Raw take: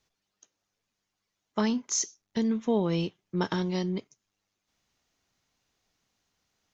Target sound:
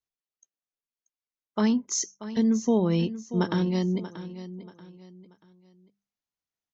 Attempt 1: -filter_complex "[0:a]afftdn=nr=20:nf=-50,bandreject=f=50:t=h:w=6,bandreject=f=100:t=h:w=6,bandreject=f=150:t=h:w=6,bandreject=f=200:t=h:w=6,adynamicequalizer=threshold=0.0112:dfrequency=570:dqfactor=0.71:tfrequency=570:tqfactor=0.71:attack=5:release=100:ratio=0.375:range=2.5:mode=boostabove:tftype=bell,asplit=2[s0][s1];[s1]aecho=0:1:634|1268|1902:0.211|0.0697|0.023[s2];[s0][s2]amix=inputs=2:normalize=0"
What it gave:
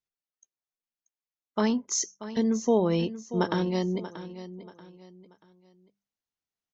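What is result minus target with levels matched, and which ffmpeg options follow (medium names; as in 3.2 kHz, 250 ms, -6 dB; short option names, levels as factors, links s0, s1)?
500 Hz band +3.5 dB
-filter_complex "[0:a]afftdn=nr=20:nf=-50,bandreject=f=50:t=h:w=6,bandreject=f=100:t=h:w=6,bandreject=f=150:t=h:w=6,bandreject=f=200:t=h:w=6,adynamicequalizer=threshold=0.0112:dfrequency=200:dqfactor=0.71:tfrequency=200:tqfactor=0.71:attack=5:release=100:ratio=0.375:range=2.5:mode=boostabove:tftype=bell,asplit=2[s0][s1];[s1]aecho=0:1:634|1268|1902:0.211|0.0697|0.023[s2];[s0][s2]amix=inputs=2:normalize=0"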